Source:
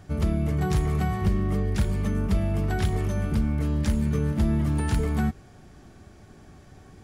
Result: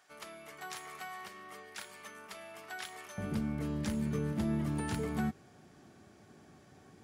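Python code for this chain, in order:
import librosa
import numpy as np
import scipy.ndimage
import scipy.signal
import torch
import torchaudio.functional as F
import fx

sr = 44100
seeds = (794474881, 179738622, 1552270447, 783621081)

y = fx.highpass(x, sr, hz=fx.steps((0.0, 1000.0), (3.18, 150.0)), slope=12)
y = y * 10.0 ** (-6.0 / 20.0)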